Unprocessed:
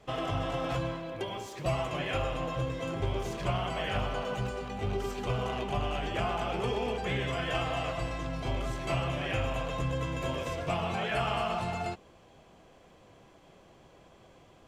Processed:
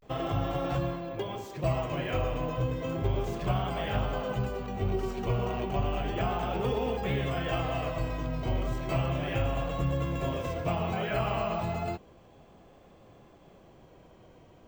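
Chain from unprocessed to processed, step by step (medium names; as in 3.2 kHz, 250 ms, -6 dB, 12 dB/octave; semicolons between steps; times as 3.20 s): tilt shelf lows +3.5 dB, about 870 Hz; vibrato 0.33 Hz 69 cents; careless resampling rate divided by 2×, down filtered, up hold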